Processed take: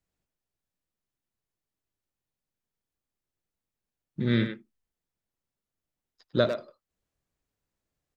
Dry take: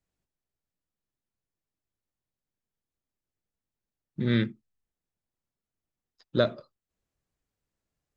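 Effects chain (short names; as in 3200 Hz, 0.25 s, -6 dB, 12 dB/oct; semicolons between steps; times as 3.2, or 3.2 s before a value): speakerphone echo 0.1 s, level -6 dB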